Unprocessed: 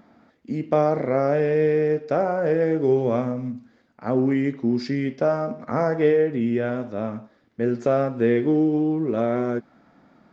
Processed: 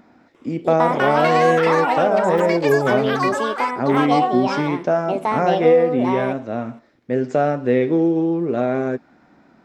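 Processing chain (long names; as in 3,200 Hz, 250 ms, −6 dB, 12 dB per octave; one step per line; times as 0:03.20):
delay with pitch and tempo change per echo 372 ms, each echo +7 semitones, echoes 3
speed change +7%
level +2.5 dB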